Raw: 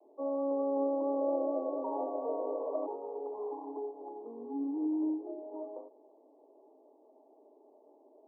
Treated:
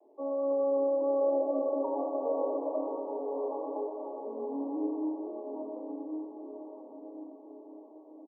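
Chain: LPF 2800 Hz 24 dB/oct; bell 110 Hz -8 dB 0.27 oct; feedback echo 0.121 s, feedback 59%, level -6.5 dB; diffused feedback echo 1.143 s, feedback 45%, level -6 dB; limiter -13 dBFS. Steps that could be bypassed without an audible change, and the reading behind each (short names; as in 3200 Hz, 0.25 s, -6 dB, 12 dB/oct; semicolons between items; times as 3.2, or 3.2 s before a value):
LPF 2800 Hz: input band ends at 1100 Hz; bell 110 Hz: input band starts at 230 Hz; limiter -13 dBFS: input peak -19.0 dBFS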